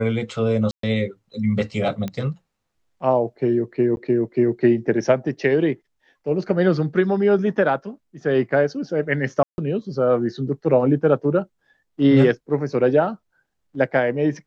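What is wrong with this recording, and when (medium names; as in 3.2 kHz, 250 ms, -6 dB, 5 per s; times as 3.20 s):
0.71–0.83 s: dropout 123 ms
2.08 s: pop -16 dBFS
3.96–3.97 s: dropout 11 ms
9.43–9.58 s: dropout 151 ms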